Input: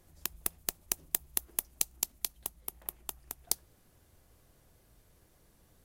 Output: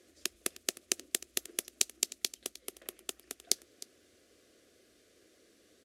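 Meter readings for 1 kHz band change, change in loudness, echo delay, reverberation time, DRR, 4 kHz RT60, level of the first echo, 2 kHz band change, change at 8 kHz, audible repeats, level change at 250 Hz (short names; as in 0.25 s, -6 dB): -4.0 dB, 0.0 dB, 0.308 s, none, none, none, -18.0 dB, +5.0 dB, +2.0 dB, 1, +4.5 dB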